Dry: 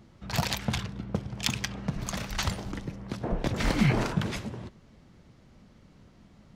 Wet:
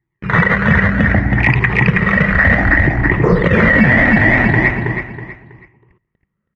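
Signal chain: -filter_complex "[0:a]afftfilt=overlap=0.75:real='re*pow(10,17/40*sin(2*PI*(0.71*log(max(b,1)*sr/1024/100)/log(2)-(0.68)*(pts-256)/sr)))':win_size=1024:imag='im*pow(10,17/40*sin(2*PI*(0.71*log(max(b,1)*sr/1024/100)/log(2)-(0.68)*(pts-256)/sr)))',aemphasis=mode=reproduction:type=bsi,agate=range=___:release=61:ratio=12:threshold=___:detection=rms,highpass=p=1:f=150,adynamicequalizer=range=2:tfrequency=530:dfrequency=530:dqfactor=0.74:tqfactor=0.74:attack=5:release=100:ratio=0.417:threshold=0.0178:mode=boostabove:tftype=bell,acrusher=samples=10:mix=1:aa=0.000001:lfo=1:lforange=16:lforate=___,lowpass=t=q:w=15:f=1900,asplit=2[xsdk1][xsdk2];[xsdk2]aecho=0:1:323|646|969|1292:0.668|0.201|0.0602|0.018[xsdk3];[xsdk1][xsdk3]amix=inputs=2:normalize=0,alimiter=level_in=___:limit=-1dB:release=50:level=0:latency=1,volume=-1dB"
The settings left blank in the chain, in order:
-40dB, -33dB, 0.59, 13.5dB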